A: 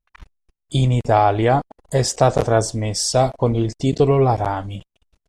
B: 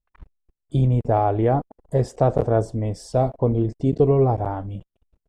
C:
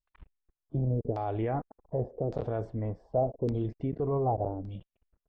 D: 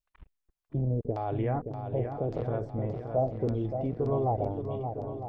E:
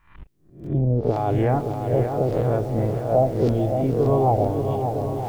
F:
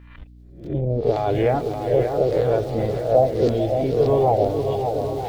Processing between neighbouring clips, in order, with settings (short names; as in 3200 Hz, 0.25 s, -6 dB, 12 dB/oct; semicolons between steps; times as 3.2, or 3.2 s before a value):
EQ curve 460 Hz 0 dB, 6300 Hz -21 dB, 10000 Hz -16 dB; gain -1.5 dB
limiter -15 dBFS, peak gain reduction 8 dB; LFO low-pass saw down 0.86 Hz 350–4900 Hz; gain -8.5 dB
swung echo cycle 0.956 s, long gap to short 1.5:1, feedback 42%, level -7.5 dB
spectral swells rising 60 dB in 0.45 s; lo-fi delay 0.441 s, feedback 55%, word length 8-bit, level -12 dB; gain +8 dB
bin magnitudes rounded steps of 15 dB; hum 60 Hz, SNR 22 dB; graphic EQ 125/250/500/1000/2000/4000 Hz -3/-3/+6/-3/+4/+10 dB